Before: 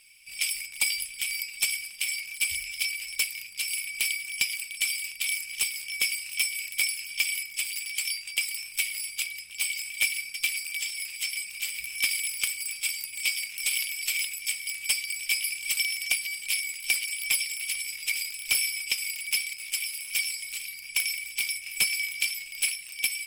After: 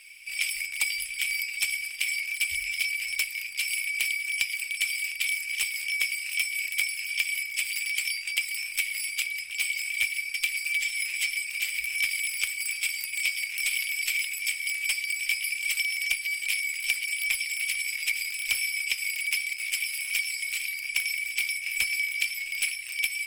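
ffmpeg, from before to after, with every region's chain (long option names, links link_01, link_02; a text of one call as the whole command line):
ffmpeg -i in.wav -filter_complex "[0:a]asettb=1/sr,asplit=3[link_01][link_02][link_03];[link_01]atrim=end=10.654[link_04];[link_02]atrim=start=10.65:end=11.34,asetpts=PTS-STARTPTS,afade=type=in:duration=0.004:curve=qsin,afade=type=out:start_time=0.686:duration=0.004:curve=qsin,equalizer=frequency=13000:width_type=o:width=0.34:gain=-3,aecho=1:1:6.5:0.85,atrim=end_sample=30429[link_05];[link_03]atrim=start=11.336[link_06];[link_04][link_05]acrossfade=duration=0.004:curve1=hsin:curve2=qsin[link_07];[link_07][link_06]acrossfade=duration=0.004:curve1=qsin:curve2=hsin,equalizer=frequency=125:width_type=o:width=1:gain=-7,equalizer=frequency=250:width_type=o:width=1:gain=-5,equalizer=frequency=2000:width_type=o:width=1:gain=8,acrossover=split=140[link_08][link_09];[link_09]acompressor=threshold=-30dB:ratio=3[link_10];[link_08][link_10]amix=inputs=2:normalize=0,volume=3dB" out.wav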